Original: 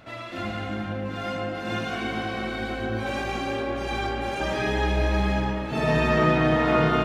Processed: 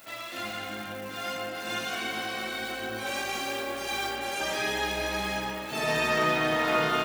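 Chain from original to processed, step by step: crackle 470 per s -46 dBFS; RIAA curve recording; 3.32–4.16 s: modulation noise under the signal 17 dB; trim -3 dB

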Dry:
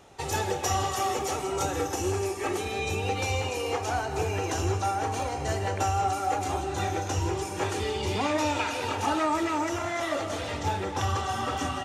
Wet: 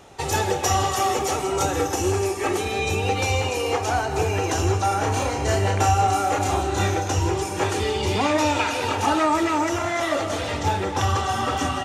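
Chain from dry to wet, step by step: 4.88–6.95 s: doubling 30 ms -3 dB; trim +6 dB

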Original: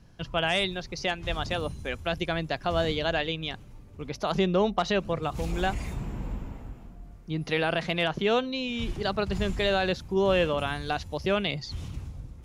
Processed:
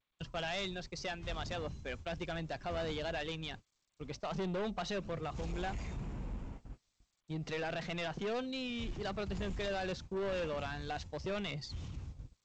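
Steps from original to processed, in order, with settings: gate -38 dBFS, range -47 dB; saturation -27 dBFS, distortion -7 dB; trim -6 dB; G.722 64 kbps 16 kHz

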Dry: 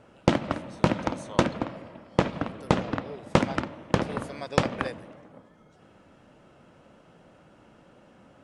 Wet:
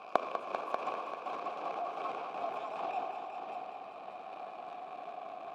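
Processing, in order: gliding tape speed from 180% -> 124%; band-stop 2.8 kHz, Q 20; in parallel at +2.5 dB: peak limiter -15.5 dBFS, peak gain reduction 9.5 dB; on the sum: waveshaping leveller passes 3; transient shaper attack -6 dB, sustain +11 dB; inverted gate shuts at -19 dBFS, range -28 dB; vowel filter a; on a send: multi-head delay 196 ms, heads all three, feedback 46%, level -9.5 dB; on the sum: trim +12 dB

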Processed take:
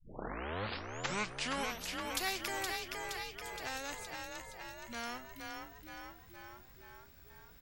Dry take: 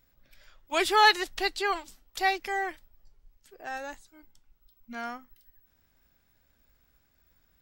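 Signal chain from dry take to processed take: tape start-up on the opening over 2.28 s; frequency-shifting echo 469 ms, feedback 48%, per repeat +36 Hz, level -7 dB; spectrum-flattening compressor 2:1; trim -6 dB

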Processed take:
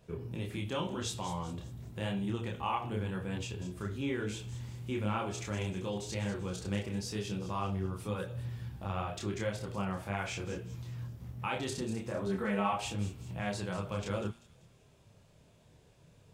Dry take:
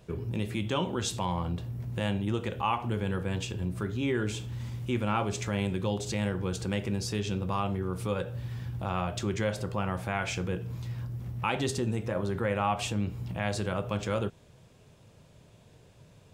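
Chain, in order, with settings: 12.26–12.73 s: comb 4.6 ms, depth 92%; feedback echo behind a high-pass 194 ms, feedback 43%, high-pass 4.6 kHz, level -9 dB; chorus voices 2, 0.89 Hz, delay 28 ms, depth 3.3 ms; de-hum 116.6 Hz, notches 40; trim -2 dB

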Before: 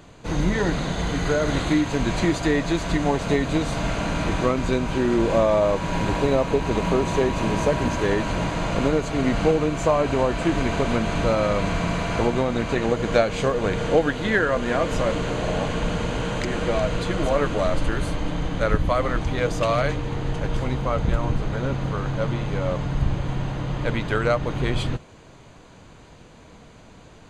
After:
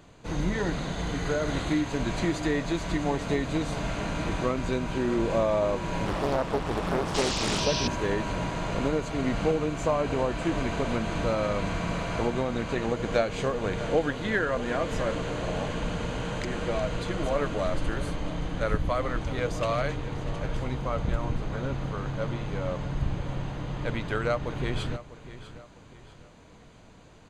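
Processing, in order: feedback delay 648 ms, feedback 36%, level -15 dB; 7.14–7.88 s: painted sound noise 2.3–6.2 kHz -26 dBFS; 6.06–7.60 s: loudspeaker Doppler distortion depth 0.89 ms; trim -6 dB

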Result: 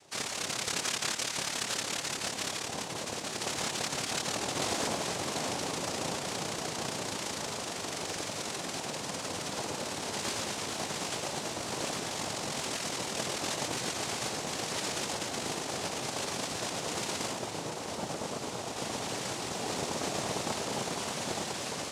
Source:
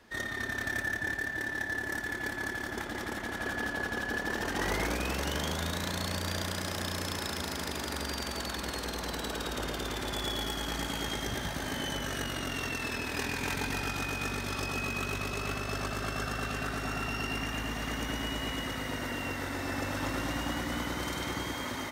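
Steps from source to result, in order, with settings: 17.31–18.76 s: low-pass 1.5 kHz 6 dB/octave; noise-vocoded speech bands 2

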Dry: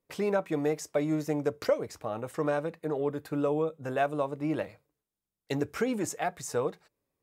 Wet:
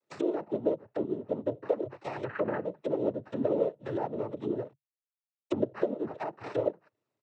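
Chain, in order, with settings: 4.64–5.54 s: hysteresis with a dead band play -38.5 dBFS; comb 2.4 ms, depth 94%; sample-and-hold 14×; 2.24–2.64 s: resonant low-pass 1.6 kHz, resonance Q 6; low-pass that closes with the level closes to 680 Hz, closed at -25.5 dBFS; noise-vocoded speech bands 12; 0.58–1.46 s: upward expansion 1.5:1, over -37 dBFS; trim -2.5 dB

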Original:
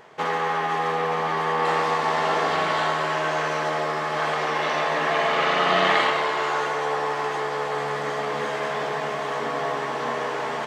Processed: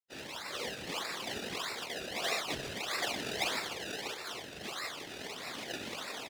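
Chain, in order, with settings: feedback comb 230 Hz, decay 0.24 s, harmonics all, mix 90%; delay 73 ms -14.5 dB; reverb removal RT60 0.66 s; reverberation RT60 0.80 s, pre-delay 43 ms, DRR -2 dB; bit crusher 7-bit; plain phase-vocoder stretch 0.59×; decimation with a swept rate 28×, swing 100% 1.6 Hz; whisper effect; frequency weighting D; trim -5.5 dB

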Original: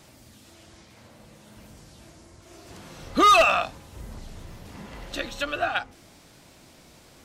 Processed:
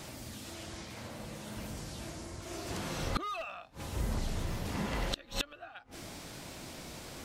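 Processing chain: dynamic bell 7.4 kHz, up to -5 dB, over -46 dBFS, Q 0.99; inverted gate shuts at -23 dBFS, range -29 dB; trim +6.5 dB

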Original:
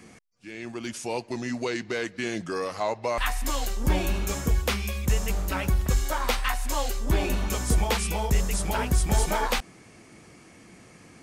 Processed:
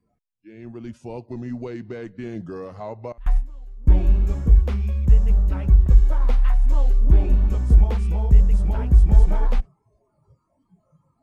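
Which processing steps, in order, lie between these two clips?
spectral noise reduction 23 dB; 3.12–3.90 s: gate with hold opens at -15 dBFS; tilt EQ -4.5 dB/octave; trim -8.5 dB

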